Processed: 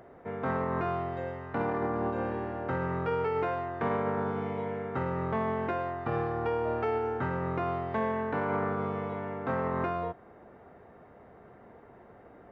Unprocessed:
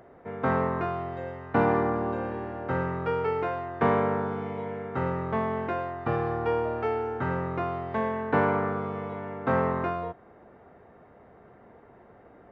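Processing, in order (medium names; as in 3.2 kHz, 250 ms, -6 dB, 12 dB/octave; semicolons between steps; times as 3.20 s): peak limiter -22 dBFS, peak gain reduction 10.5 dB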